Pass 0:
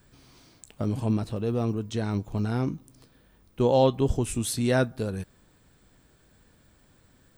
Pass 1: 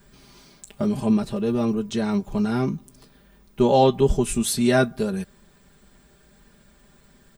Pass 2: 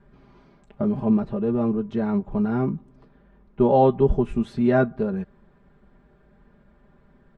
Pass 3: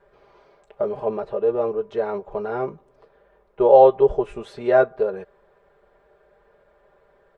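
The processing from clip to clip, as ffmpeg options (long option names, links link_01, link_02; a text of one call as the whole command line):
ffmpeg -i in.wav -af "aecho=1:1:5:0.87,volume=3dB" out.wav
ffmpeg -i in.wav -af "lowpass=1400" out.wav
ffmpeg -i in.wav -af "lowshelf=frequency=340:width_type=q:width=3:gain=-12,volume=1.5dB" out.wav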